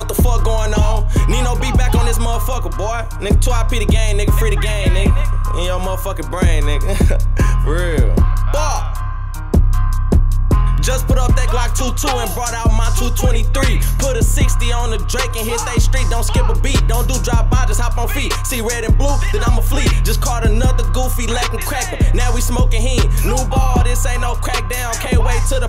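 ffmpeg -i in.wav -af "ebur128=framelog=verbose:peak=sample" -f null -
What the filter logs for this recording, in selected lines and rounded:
Integrated loudness:
  I:         -17.0 LUFS
  Threshold: -27.0 LUFS
Loudness range:
  LRA:         0.5 LU
  Threshold: -37.1 LUFS
  LRA low:   -17.3 LUFS
  LRA high:  -16.9 LUFS
Sample peak:
  Peak:       -4.1 dBFS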